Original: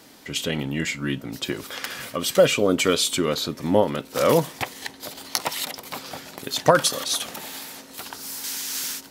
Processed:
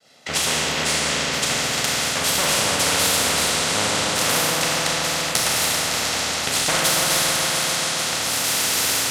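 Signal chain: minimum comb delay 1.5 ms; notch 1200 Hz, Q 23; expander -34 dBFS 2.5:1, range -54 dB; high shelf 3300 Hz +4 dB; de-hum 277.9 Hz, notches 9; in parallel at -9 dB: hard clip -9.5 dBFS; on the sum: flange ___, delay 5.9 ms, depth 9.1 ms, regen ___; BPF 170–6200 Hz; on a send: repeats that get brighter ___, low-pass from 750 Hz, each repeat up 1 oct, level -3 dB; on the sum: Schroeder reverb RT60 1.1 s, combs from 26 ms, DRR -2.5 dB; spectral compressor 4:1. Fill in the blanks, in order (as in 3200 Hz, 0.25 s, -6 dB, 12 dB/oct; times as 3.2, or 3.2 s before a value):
1.9 Hz, -40%, 0.14 s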